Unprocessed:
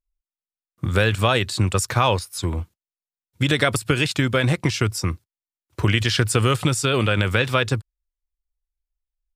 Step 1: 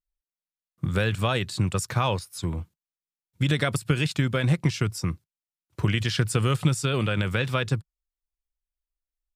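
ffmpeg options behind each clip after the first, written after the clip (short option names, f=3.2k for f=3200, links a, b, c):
-af "equalizer=f=160:w=2:g=8.5,volume=-7dB"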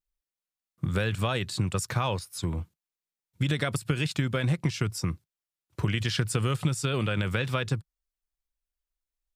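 -af "acompressor=threshold=-25dB:ratio=2"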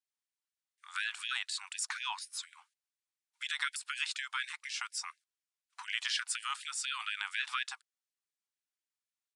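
-af "aresample=22050,aresample=44100,afftfilt=real='re*gte(b*sr/1024,720*pow(1600/720,0.5+0.5*sin(2*PI*4.1*pts/sr)))':imag='im*gte(b*sr/1024,720*pow(1600/720,0.5+0.5*sin(2*PI*4.1*pts/sr)))':win_size=1024:overlap=0.75,volume=-1.5dB"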